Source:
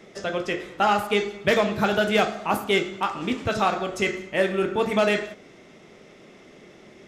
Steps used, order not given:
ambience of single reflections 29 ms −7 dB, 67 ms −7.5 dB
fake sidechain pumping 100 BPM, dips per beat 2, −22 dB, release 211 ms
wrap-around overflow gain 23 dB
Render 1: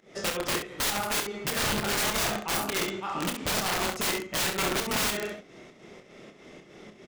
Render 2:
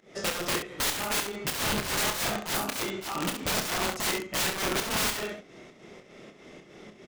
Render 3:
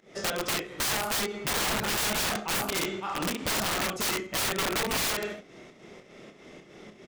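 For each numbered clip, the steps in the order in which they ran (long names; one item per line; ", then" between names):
fake sidechain pumping, then wrap-around overflow, then ambience of single reflections
wrap-around overflow, then fake sidechain pumping, then ambience of single reflections
fake sidechain pumping, then ambience of single reflections, then wrap-around overflow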